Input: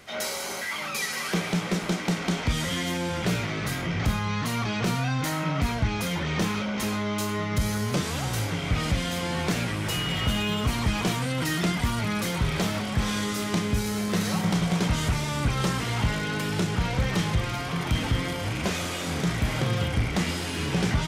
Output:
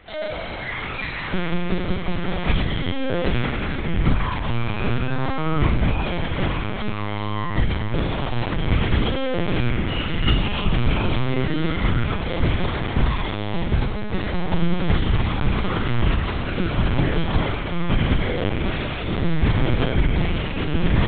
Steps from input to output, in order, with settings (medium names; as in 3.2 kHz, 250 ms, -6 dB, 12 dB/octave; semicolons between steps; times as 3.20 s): bass shelf 380 Hz +5.5 dB; flutter echo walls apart 7.2 m, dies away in 0.93 s; LPC vocoder at 8 kHz pitch kept